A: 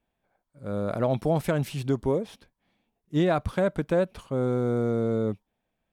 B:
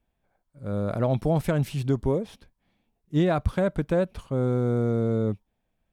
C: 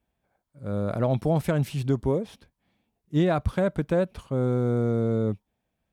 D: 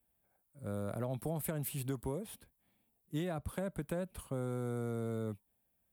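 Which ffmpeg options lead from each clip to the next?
ffmpeg -i in.wav -af "lowshelf=frequency=120:gain=10.5,volume=-1dB" out.wav
ffmpeg -i in.wav -af "highpass=51" out.wav
ffmpeg -i in.wav -filter_complex "[0:a]acrossover=split=230|770[link_01][link_02][link_03];[link_01]acompressor=threshold=-34dB:ratio=4[link_04];[link_02]acompressor=threshold=-34dB:ratio=4[link_05];[link_03]acompressor=threshold=-41dB:ratio=4[link_06];[link_04][link_05][link_06]amix=inputs=3:normalize=0,aexciter=amount=7.3:drive=4.7:freq=8200,volume=-6.5dB" out.wav

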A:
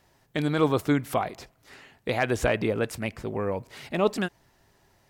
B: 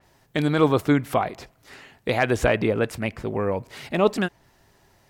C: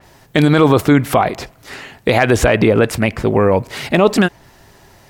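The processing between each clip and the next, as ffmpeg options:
ffmpeg -i in.wav -af "adynamicequalizer=threshold=0.00447:dfrequency=3900:dqfactor=0.7:tfrequency=3900:tqfactor=0.7:attack=5:release=100:ratio=0.375:range=3:mode=cutabove:tftype=highshelf,volume=4dB" out.wav
ffmpeg -i in.wav -af "alimiter=level_in=14dB:limit=-1dB:release=50:level=0:latency=1,volume=-1dB" out.wav

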